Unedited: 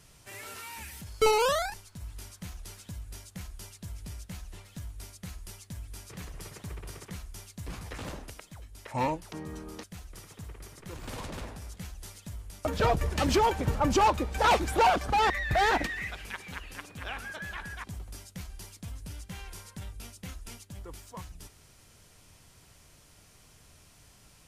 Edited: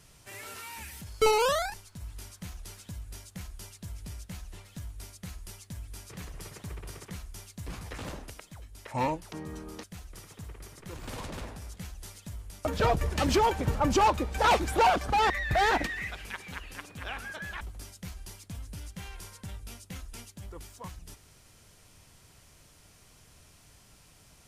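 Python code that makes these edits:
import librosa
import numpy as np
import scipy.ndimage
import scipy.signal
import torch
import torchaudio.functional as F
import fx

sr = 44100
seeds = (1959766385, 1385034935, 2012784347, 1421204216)

y = fx.edit(x, sr, fx.cut(start_s=17.61, length_s=0.33), tone=tone)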